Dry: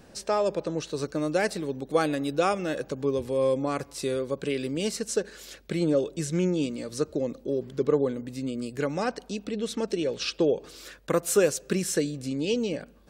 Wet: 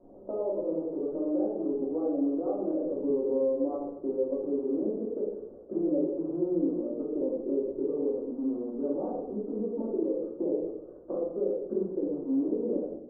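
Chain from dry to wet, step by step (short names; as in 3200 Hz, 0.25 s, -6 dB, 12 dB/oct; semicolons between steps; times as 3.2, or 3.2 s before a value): rattling part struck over -35 dBFS, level -23 dBFS; HPF 300 Hz 24 dB/oct; compressor 6:1, threshold -30 dBFS, peak gain reduction 13 dB; bit-crush 9-bit; Gaussian blur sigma 14 samples; shoebox room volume 230 m³, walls mixed, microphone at 2.7 m; 3.1–3.76 three-band squash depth 70%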